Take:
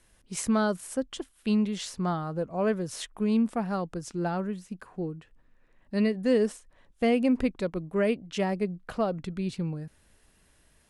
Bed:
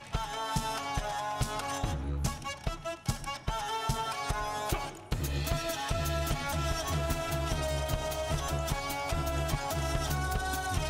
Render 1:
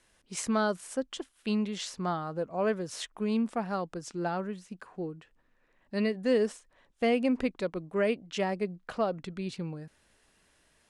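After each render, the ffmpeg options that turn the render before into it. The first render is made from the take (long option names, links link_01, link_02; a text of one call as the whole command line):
ffmpeg -i in.wav -af "lowpass=8600,lowshelf=frequency=190:gain=-10.5" out.wav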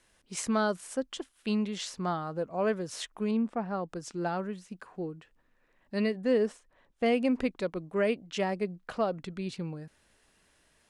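ffmpeg -i in.wav -filter_complex "[0:a]asettb=1/sr,asplit=3[link_01][link_02][link_03];[link_01]atrim=end=3.314[link_04];[link_02]atrim=start=3.31:end=3.89,asetpts=PTS-STARTPTS,afade=type=in:duration=0.004:curve=qsin,afade=type=out:start_time=0.576:duration=0.004:curve=qsin,lowpass=frequency=1400:poles=1[link_05];[link_03]atrim=start=3.886[link_06];[link_04][link_05]acrossfade=duration=0.004:curve1=hsin:curve2=qsin[link_07];[link_07][link_06]acrossfade=duration=0.004:curve1=qsin:curve2=hsin,asettb=1/sr,asplit=3[link_08][link_09][link_10];[link_08]atrim=end=6.174[link_11];[link_09]atrim=start=6.17:end=7.06,asetpts=PTS-STARTPTS,afade=type=in:duration=0.004:curve=qsin,afade=type=out:start_time=0.886:duration=0.004:curve=qsin,highshelf=frequency=3100:gain=-7.5[link_12];[link_10]atrim=start=7.056[link_13];[link_11][link_12]acrossfade=duration=0.004:curve1=hsin:curve2=qsin[link_14];[link_14][link_13]acrossfade=duration=0.004:curve1=qsin:curve2=hsin" out.wav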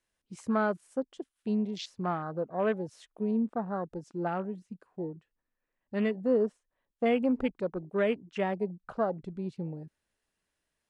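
ffmpeg -i in.wav -af "afwtdn=0.0112" out.wav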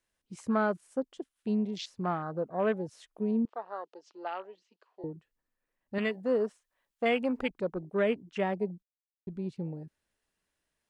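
ffmpeg -i in.wav -filter_complex "[0:a]asettb=1/sr,asplit=3[link_01][link_02][link_03];[link_01]atrim=end=3.454[link_04];[link_02]atrim=start=3.45:end=5.04,asetpts=PTS-STARTPTS,afade=type=in:duration=0.004:curve=qsin,afade=type=out:start_time=1.586:duration=0.004:curve=qsin,highpass=frequency=480:width=0.5412,highpass=frequency=480:width=1.3066,equalizer=frequency=520:width_type=q:width=4:gain=-5,equalizer=frequency=750:width_type=q:width=4:gain=-4,equalizer=frequency=1500:width_type=q:width=4:gain=-5,equalizer=frequency=3000:width_type=q:width=4:gain=7,equalizer=frequency=4400:width_type=q:width=4:gain=5,lowpass=frequency=6100:width=0.5412,lowpass=frequency=6100:width=1.3066[link_05];[link_03]atrim=start=5.036[link_06];[link_04][link_05]acrossfade=duration=0.004:curve1=hsin:curve2=qsin[link_07];[link_07][link_06]acrossfade=duration=0.004:curve1=qsin:curve2=hsin,asettb=1/sr,asplit=3[link_08][link_09][link_10];[link_08]atrim=end=5.984[link_11];[link_09]atrim=start=5.98:end=7.5,asetpts=PTS-STARTPTS,afade=type=in:duration=0.004:curve=qsin,afade=type=out:start_time=1.516:duration=0.004:curve=qsin,tiltshelf=frequency=630:gain=-6[link_12];[link_10]atrim=start=7.496[link_13];[link_11][link_12]acrossfade=duration=0.004:curve1=hsin:curve2=qsin[link_14];[link_14][link_13]acrossfade=duration=0.004:curve1=qsin:curve2=hsin,asplit=3[link_15][link_16][link_17];[link_15]atrim=end=8.83,asetpts=PTS-STARTPTS,afade=type=out:start_time=8.826:duration=0.004:curve=hsin[link_18];[link_16]atrim=start=8.83:end=9.27,asetpts=PTS-STARTPTS,volume=0[link_19];[link_17]atrim=start=9.27,asetpts=PTS-STARTPTS,afade=type=in:duration=0.004:curve=hsin[link_20];[link_18][link_19][link_20]concat=n=3:v=0:a=1" out.wav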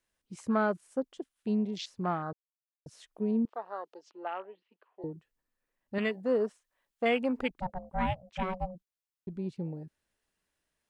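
ffmpeg -i in.wav -filter_complex "[0:a]asettb=1/sr,asplit=3[link_01][link_02][link_03];[link_01]atrim=end=4.114[link_04];[link_02]atrim=start=4.11:end=5.02,asetpts=PTS-STARTPTS,afade=type=in:duration=0.004:curve=qsin,afade=type=out:start_time=0.906:duration=0.004:curve=qsin,lowpass=frequency=3100:width=0.5412,lowpass=frequency=3100:width=1.3066[link_05];[link_03]atrim=start=5.016[link_06];[link_04][link_05]acrossfade=duration=0.004:curve1=hsin:curve2=qsin[link_07];[link_07][link_06]acrossfade=duration=0.004:curve1=qsin:curve2=hsin,asplit=3[link_08][link_09][link_10];[link_08]afade=type=out:start_time=7.59:duration=0.02[link_11];[link_09]aeval=exprs='val(0)*sin(2*PI*370*n/s)':channel_layout=same,afade=type=in:start_time=7.59:duration=0.02,afade=type=out:start_time=8.74:duration=0.02[link_12];[link_10]afade=type=in:start_time=8.74:duration=0.02[link_13];[link_11][link_12][link_13]amix=inputs=3:normalize=0,asplit=3[link_14][link_15][link_16];[link_14]atrim=end=2.33,asetpts=PTS-STARTPTS,afade=type=out:start_time=2.326:duration=0.004:curve=hsin[link_17];[link_15]atrim=start=2.33:end=2.86,asetpts=PTS-STARTPTS,volume=0[link_18];[link_16]atrim=start=2.86,asetpts=PTS-STARTPTS,afade=type=in:duration=0.004:curve=hsin[link_19];[link_17][link_18][link_19]concat=n=3:v=0:a=1" out.wav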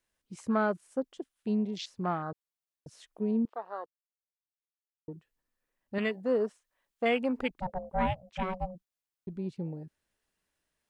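ffmpeg -i in.wav -filter_complex "[0:a]asettb=1/sr,asplit=3[link_01][link_02][link_03];[link_01]atrim=end=7.674[link_04];[link_02]atrim=start=7.67:end=8.08,asetpts=PTS-STARTPTS,afade=type=in:duration=0.004:curve=qsin,afade=type=out:start_time=0.406:duration=0.004:curve=qsin,equalizer=frequency=490:width_type=o:width=0.9:gain=8[link_05];[link_03]atrim=start=8.076[link_06];[link_04][link_05]acrossfade=duration=0.004:curve1=hsin:curve2=qsin[link_07];[link_07][link_06]acrossfade=duration=0.004:curve1=qsin:curve2=hsin,asplit=3[link_08][link_09][link_10];[link_08]atrim=end=3.86,asetpts=PTS-STARTPTS,afade=type=out:start_time=3.856:duration=0.004:curve=hsin[link_11];[link_09]atrim=start=3.86:end=5.08,asetpts=PTS-STARTPTS,volume=0[link_12];[link_10]atrim=start=5.08,asetpts=PTS-STARTPTS,afade=type=in:duration=0.004:curve=hsin[link_13];[link_11][link_12][link_13]concat=n=3:v=0:a=1" out.wav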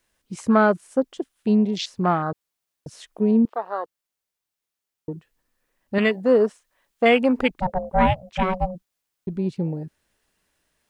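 ffmpeg -i in.wav -af "volume=11dB" out.wav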